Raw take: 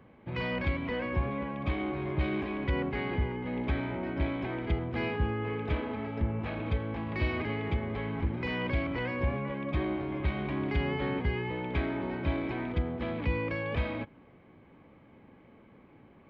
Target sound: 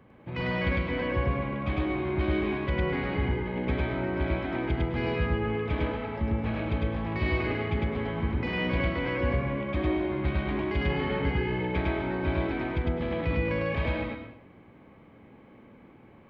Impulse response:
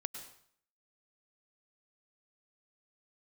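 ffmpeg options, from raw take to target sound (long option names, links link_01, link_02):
-filter_complex "[0:a]asplit=2[link_01][link_02];[1:a]atrim=start_sample=2205,adelay=103[link_03];[link_02][link_03]afir=irnorm=-1:irlink=0,volume=2dB[link_04];[link_01][link_04]amix=inputs=2:normalize=0"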